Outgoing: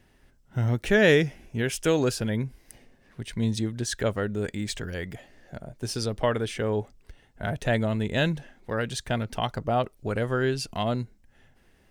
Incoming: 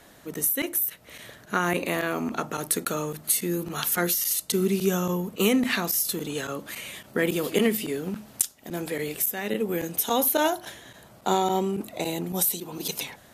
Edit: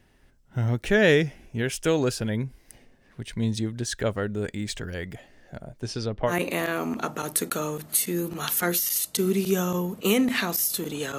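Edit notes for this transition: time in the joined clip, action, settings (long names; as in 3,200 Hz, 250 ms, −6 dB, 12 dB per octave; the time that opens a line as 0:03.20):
outgoing
0:05.80–0:06.34: low-pass filter 8,400 Hz → 1,700 Hz
0:06.30: continue with incoming from 0:01.65, crossfade 0.08 s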